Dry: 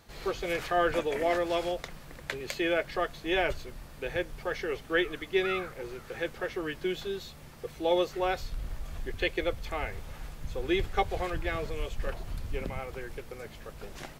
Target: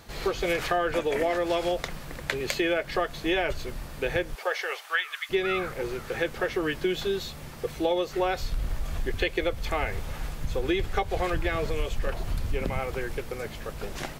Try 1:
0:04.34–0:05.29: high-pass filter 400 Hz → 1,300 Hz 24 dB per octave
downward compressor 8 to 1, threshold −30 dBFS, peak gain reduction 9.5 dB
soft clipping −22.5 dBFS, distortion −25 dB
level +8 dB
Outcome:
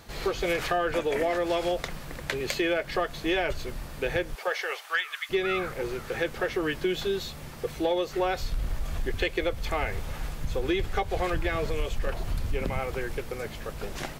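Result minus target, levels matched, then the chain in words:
soft clipping: distortion +19 dB
0:04.34–0:05.29: high-pass filter 400 Hz → 1,300 Hz 24 dB per octave
downward compressor 8 to 1, threshold −30 dBFS, peak gain reduction 9.5 dB
soft clipping −11.5 dBFS, distortion −44 dB
level +8 dB

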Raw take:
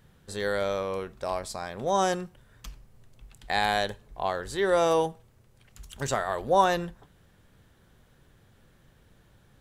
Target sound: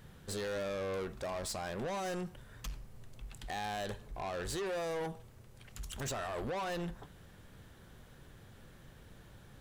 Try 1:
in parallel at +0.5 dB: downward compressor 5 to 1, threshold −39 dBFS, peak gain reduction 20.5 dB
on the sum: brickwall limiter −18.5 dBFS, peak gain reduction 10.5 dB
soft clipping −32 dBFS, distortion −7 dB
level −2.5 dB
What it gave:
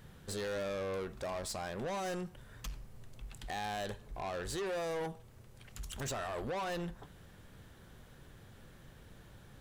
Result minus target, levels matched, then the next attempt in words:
downward compressor: peak gain reduction +7 dB
in parallel at +0.5 dB: downward compressor 5 to 1, threshold −30 dBFS, peak gain reduction 13.5 dB
on the sum: brickwall limiter −18.5 dBFS, peak gain reduction 11.5 dB
soft clipping −32 dBFS, distortion −7 dB
level −2.5 dB

